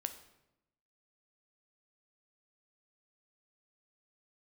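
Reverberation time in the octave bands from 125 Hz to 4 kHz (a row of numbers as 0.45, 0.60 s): 1.1, 1.1, 0.95, 0.85, 0.75, 0.65 s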